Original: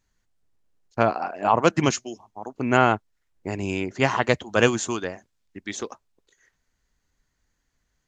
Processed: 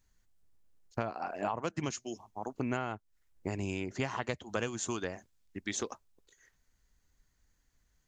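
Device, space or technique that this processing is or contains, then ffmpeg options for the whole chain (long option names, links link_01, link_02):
ASMR close-microphone chain: -af "lowshelf=frequency=110:gain=6.5,acompressor=threshold=-27dB:ratio=10,highshelf=frequency=7800:gain=8,volume=-3.5dB"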